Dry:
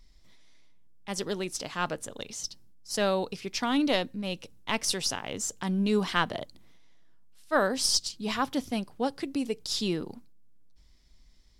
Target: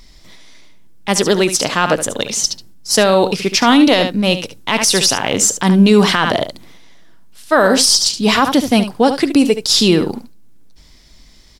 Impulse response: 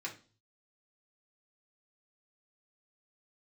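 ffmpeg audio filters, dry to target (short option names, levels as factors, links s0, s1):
-af "lowshelf=f=88:g=-8.5,aecho=1:1:72:0.266,alimiter=level_in=10.6:limit=0.891:release=50:level=0:latency=1,volume=0.891"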